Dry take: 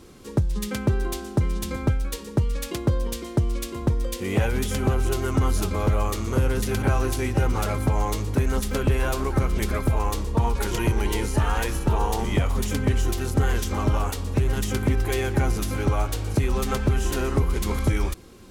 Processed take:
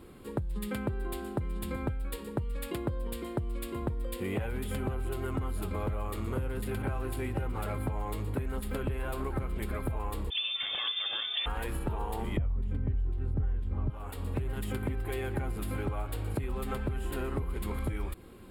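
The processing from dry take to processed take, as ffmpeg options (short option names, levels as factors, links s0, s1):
-filter_complex "[0:a]asettb=1/sr,asplit=3[s0][s1][s2];[s0]atrim=end=10.304[s3];[s1]atrim=start=10.3:end=11.46,asetpts=PTS-STARTPTS,afade=t=in:d=0.004:c=qsin,afade=t=out:st=1.156:d=0.004:c=qsin,lowpass=f=3100:t=q:w=0.5098,lowpass=f=3100:t=q:w=0.6013,lowpass=f=3100:t=q:w=0.9,lowpass=f=3100:t=q:w=2.563,afreqshift=-3600[s4];[s2]atrim=start=11.456[s5];[s3][s4]acrossfade=d=0.004:c1=hsin:c2=qsin[s6];[s6][s5]acrossfade=d=0.004:c1=qsin:c2=hsin,asettb=1/sr,asplit=3[s7][s8][s9];[s7]atrim=end=12.374[s10];[s8]atrim=start=12.37:end=13.9,asetpts=PTS-STARTPTS,afade=t=in:d=0.004:c=qsin,afade=t=out:st=1.526:d=0.004:c=qsin,aemphasis=mode=reproduction:type=riaa[s11];[s9]atrim=start=13.896[s12];[s10][s11]acrossfade=d=0.004:c1=hsin:c2=qsin[s13];[s13][s12]acrossfade=d=0.004:c1=qsin:c2=hsin,equalizer=f=5800:w=1.6:g=-15,bandreject=f=6100:w=5.3,acompressor=threshold=0.0447:ratio=6,volume=0.708"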